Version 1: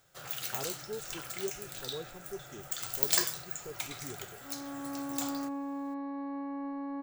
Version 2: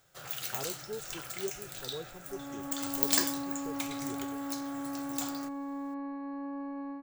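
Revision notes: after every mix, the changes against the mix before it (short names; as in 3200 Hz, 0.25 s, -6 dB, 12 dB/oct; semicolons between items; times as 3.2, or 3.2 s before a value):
second sound: entry -2.15 s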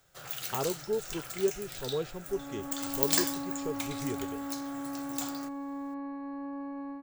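speech +9.0 dB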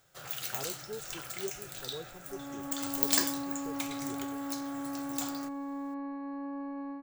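speech -10.5 dB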